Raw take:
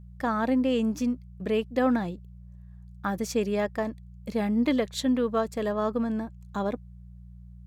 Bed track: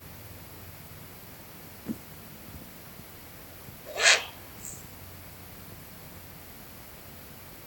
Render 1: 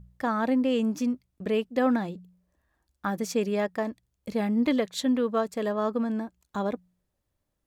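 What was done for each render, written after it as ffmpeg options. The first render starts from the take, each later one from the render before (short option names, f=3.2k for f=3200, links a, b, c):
-af "bandreject=f=60:t=h:w=4,bandreject=f=120:t=h:w=4,bandreject=f=180:t=h:w=4"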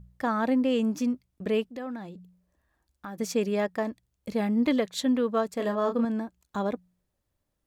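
-filter_complex "[0:a]asettb=1/sr,asplit=3[a][b][c];[a]atrim=end=1.664[d];[b]atrim=start=1.66:end=3.2,asetpts=PTS-STARTPTS,afade=t=in:d=0.004:c=qsin,afade=t=out:st=1.536:d=0.004:c=qsin,acompressor=threshold=-43dB:ratio=2:attack=3.2:release=140:knee=1:detection=peak[e];[c]atrim=start=3.196[f];[d][e]acrossfade=d=0.004:c1=hsin:c2=qsin[g];[g][f]acrossfade=d=0.004:c1=qsin:c2=hsin,asettb=1/sr,asplit=3[h][i][j];[h]atrim=end=5.564[k];[i]atrim=start=5.56:end=6.05,asetpts=PTS-STARTPTS,afade=t=in:d=0.004:c=qsin,afade=t=out:st=0.486:d=0.004:c=qsin,asplit=2[l][m];[m]adelay=30,volume=-6dB[n];[l][n]amix=inputs=2:normalize=0,atrim=end_sample=21609[o];[j]atrim=start=6.046[p];[k][o]acrossfade=d=0.004:c1=hsin:c2=qsin[q];[q][p]acrossfade=d=0.004:c1=qsin:c2=hsin"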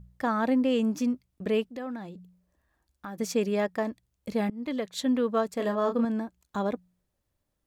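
-filter_complex "[0:a]asplit=2[a][b];[a]atrim=end=4.5,asetpts=PTS-STARTPTS,afade=t=out:st=4.496:d=0.004:c=hsin:silence=0.0707946[c];[b]atrim=start=4.5,asetpts=PTS-STARTPTS,afade=t=in:d=0.87:c=qsin:silence=0.0707946[d];[c][d]concat=n=2:v=0:a=1"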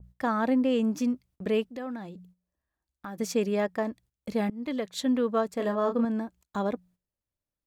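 -af "agate=range=-13dB:threshold=-55dB:ratio=16:detection=peak,adynamicequalizer=threshold=0.01:dfrequency=2200:dqfactor=0.7:tfrequency=2200:tqfactor=0.7:attack=5:release=100:ratio=0.375:range=2:mode=cutabove:tftype=highshelf"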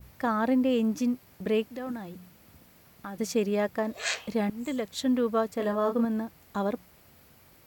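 -filter_complex "[1:a]volume=-11dB[a];[0:a][a]amix=inputs=2:normalize=0"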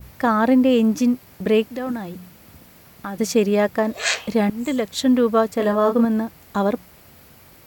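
-af "volume=9dB"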